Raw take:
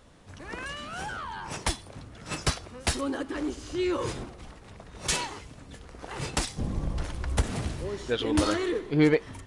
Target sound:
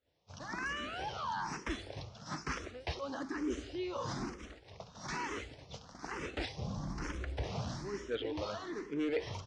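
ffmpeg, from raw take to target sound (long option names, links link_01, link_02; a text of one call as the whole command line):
ffmpeg -i in.wav -filter_complex "[0:a]highpass=40,lowshelf=frequency=130:gain=-6,acrossover=split=2900[link_01][link_02];[link_02]acompressor=threshold=-49dB:ratio=4:attack=1:release=60[link_03];[link_01][link_03]amix=inputs=2:normalize=0,highshelf=frequency=4500:gain=-7,volume=22dB,asoftclip=hard,volume=-22dB,lowpass=frequency=5700:width_type=q:width=3.4,agate=range=-33dB:threshold=-42dB:ratio=3:detection=peak,areverse,acompressor=threshold=-39dB:ratio=6,areverse,aecho=1:1:176:0.0891,asplit=2[link_04][link_05];[link_05]afreqshift=1.1[link_06];[link_04][link_06]amix=inputs=2:normalize=1,volume=6dB" out.wav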